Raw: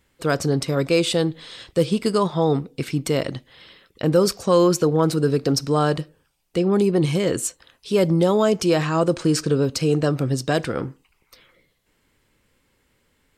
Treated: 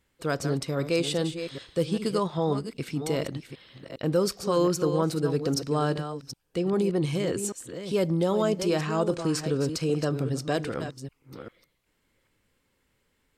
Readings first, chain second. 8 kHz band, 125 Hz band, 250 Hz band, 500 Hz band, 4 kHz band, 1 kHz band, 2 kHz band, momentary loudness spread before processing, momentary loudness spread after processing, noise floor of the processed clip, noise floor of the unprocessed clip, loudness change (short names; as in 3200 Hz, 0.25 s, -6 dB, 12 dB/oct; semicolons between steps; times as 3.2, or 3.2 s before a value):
-6.5 dB, -6.5 dB, -6.5 dB, -6.5 dB, -6.5 dB, -6.5 dB, -6.5 dB, 9 LU, 12 LU, -73 dBFS, -67 dBFS, -6.5 dB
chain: reverse delay 0.396 s, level -9 dB; gain -7 dB